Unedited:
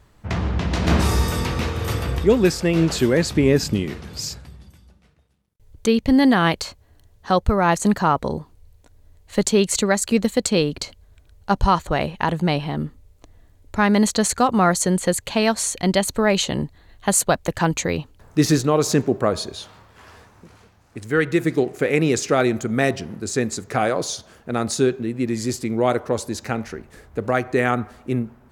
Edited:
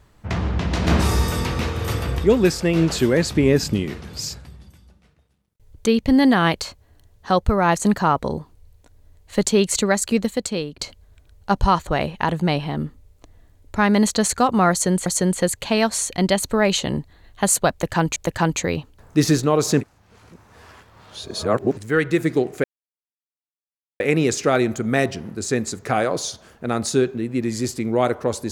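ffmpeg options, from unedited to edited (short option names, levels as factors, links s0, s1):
-filter_complex "[0:a]asplit=7[s0][s1][s2][s3][s4][s5][s6];[s0]atrim=end=10.79,asetpts=PTS-STARTPTS,afade=t=out:st=10.03:d=0.76:silence=0.251189[s7];[s1]atrim=start=10.79:end=15.062,asetpts=PTS-STARTPTS,afade=t=in:d=0.004:c=hsin:silence=0.251189[s8];[s2]atrim=start=14.708:end=17.812[s9];[s3]atrim=start=17.368:end=19.022[s10];[s4]atrim=start=19.018:end=20.982,asetpts=PTS-STARTPTS,areverse[s11];[s5]atrim=start=20.978:end=21.85,asetpts=PTS-STARTPTS,afade=t=out:st=0.868:d=0.004:c=hsin,apad=pad_dur=1.36[s12];[s6]atrim=start=21.85,asetpts=PTS-STARTPTS,afade=t=in:d=0.004:c=hsin[s13];[s7][s8]concat=n=2:v=0:a=1[s14];[s14][s9]acrossfade=d=0.004:c1=hsin:c2=hsin[s15];[s15][s10]acrossfade=d=0.004:c1=hsin:c2=hsin[s16];[s16][s11]acrossfade=d=0.004:c1=hsin:c2=hsin[s17];[s12][s13]concat=n=2:v=0:a=1[s18];[s17][s18]acrossfade=d=0.004:c1=hsin:c2=hsin"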